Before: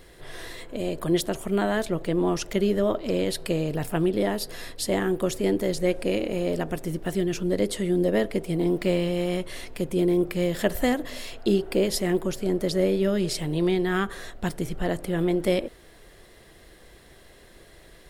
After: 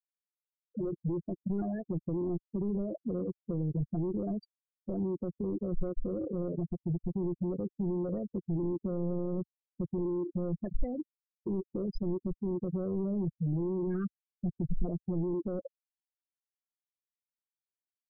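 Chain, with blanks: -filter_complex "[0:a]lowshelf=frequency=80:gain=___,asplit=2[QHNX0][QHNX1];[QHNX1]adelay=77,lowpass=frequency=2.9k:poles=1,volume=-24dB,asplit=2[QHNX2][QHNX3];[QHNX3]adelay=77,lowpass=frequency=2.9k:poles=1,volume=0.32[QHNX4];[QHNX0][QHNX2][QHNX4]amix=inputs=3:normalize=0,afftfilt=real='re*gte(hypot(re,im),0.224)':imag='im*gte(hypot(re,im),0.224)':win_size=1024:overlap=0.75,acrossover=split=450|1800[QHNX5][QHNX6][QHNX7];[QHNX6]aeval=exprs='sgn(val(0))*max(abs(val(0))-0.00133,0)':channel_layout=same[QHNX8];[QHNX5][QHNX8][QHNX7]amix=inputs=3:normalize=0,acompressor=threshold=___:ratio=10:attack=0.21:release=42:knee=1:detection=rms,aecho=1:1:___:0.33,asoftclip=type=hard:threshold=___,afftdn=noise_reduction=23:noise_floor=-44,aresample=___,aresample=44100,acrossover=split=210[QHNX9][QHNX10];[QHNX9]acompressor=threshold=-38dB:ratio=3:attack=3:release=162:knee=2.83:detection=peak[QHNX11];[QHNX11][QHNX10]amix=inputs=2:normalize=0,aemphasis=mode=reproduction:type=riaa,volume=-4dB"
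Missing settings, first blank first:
-5.5, -30dB, 5.7, -30.5dB, 11025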